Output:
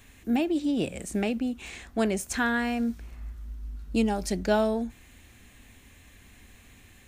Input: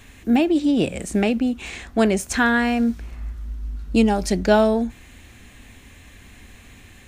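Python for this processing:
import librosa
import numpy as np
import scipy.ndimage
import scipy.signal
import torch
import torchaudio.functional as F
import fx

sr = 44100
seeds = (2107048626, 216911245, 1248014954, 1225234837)

y = fx.high_shelf(x, sr, hz=10000.0, db=7.5)
y = y * 10.0 ** (-8.0 / 20.0)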